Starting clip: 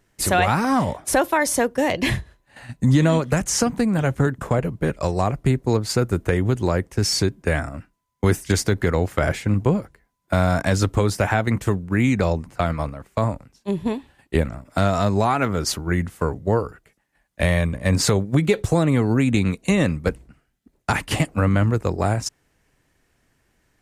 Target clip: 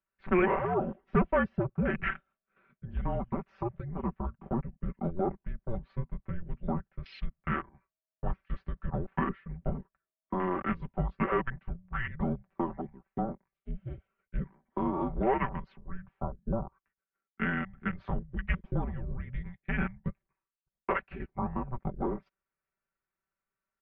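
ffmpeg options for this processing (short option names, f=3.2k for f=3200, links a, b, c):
-af "lowshelf=f=440:g=-6,afwtdn=0.0501,highpass=f=270:t=q:w=0.5412,highpass=f=270:t=q:w=1.307,lowpass=f=3k:t=q:w=0.5176,lowpass=f=3k:t=q:w=0.7071,lowpass=f=3k:t=q:w=1.932,afreqshift=-360,aecho=1:1:5.2:0.72,volume=-7dB"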